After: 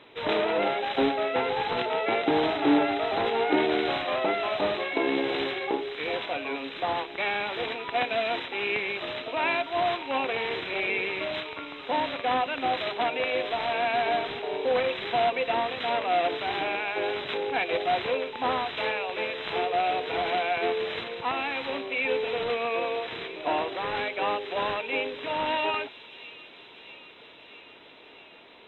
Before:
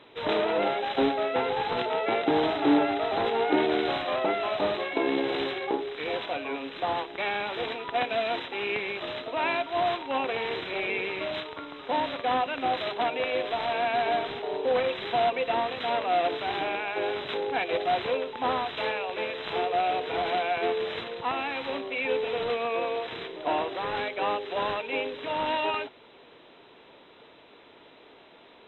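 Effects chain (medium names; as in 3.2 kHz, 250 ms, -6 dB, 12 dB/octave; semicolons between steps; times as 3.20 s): peaking EQ 2.3 kHz +3 dB 0.77 oct; feedback echo behind a high-pass 648 ms, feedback 73%, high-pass 3.5 kHz, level -9 dB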